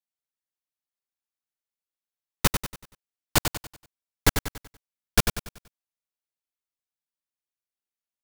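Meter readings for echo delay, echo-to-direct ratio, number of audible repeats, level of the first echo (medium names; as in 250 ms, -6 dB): 95 ms, -5.5 dB, 4, -6.5 dB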